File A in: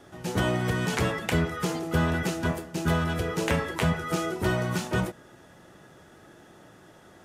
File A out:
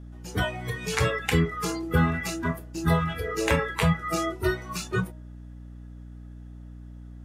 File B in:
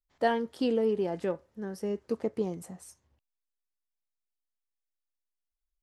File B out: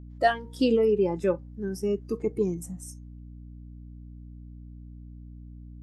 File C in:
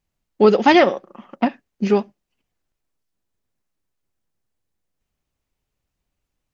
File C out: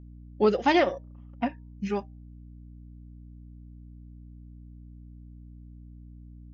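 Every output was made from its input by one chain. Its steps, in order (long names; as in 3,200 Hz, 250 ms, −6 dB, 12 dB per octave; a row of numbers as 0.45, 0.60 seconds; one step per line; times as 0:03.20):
hum removal 155.4 Hz, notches 6
noise reduction from a noise print of the clip's start 16 dB
mains hum 60 Hz, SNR 14 dB
loudness normalisation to −27 LKFS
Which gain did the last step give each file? +4.0, +6.5, −8.5 decibels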